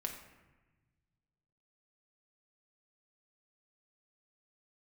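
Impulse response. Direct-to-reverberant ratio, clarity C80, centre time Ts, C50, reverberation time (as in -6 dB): 1.5 dB, 8.5 dB, 27 ms, 6.5 dB, 1.2 s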